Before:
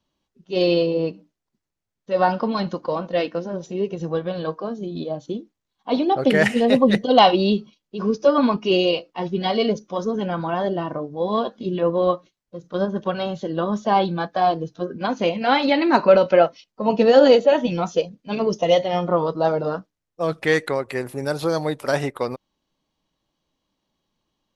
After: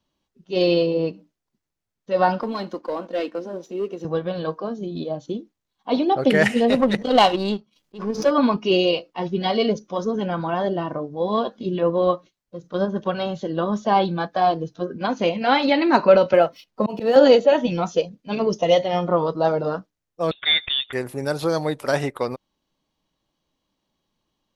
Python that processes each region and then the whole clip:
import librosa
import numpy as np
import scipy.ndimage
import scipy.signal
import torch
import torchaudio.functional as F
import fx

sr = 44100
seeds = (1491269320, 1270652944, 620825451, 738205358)

y = fx.chain(x, sr, fx.ladder_highpass(hz=220.0, resonance_pct=35),
    fx.leveller(passes=1), at=(2.41, 4.05))
y = fx.chain(y, sr, fx.power_curve(exponent=1.4),
    fx.pre_swell(db_per_s=120.0), at=(6.71, 8.31))
y = fx.chain(y, sr, fx.median_filter(points=5),
    fx.auto_swell(attack_ms=360.0),
    fx.band_squash(depth_pct=70), at=(16.33, 17.16))
y = fx.chain(y, sr, fx.cvsd(bps=64000),
    fx.highpass(hz=270.0, slope=24),
    fx.freq_invert(carrier_hz=4000), at=(20.31, 20.93))